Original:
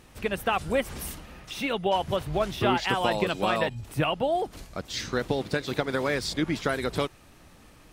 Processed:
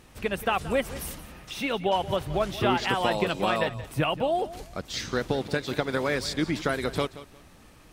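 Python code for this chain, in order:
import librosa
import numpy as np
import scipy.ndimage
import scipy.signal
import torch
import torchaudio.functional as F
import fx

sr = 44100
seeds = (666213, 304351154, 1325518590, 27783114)

y = fx.echo_feedback(x, sr, ms=177, feedback_pct=24, wet_db=-16)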